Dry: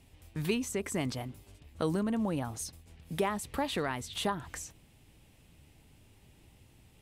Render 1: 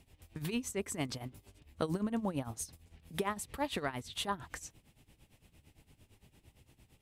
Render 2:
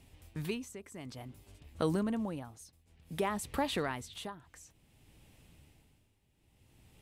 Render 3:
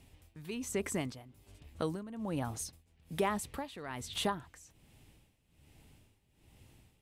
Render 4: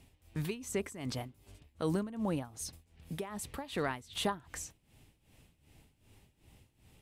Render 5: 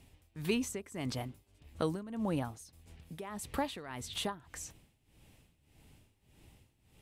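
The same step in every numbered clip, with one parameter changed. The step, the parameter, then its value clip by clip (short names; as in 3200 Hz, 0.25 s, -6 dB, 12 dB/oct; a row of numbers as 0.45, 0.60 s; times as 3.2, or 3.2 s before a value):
tremolo, rate: 8.8, 0.56, 1.2, 2.6, 1.7 Hz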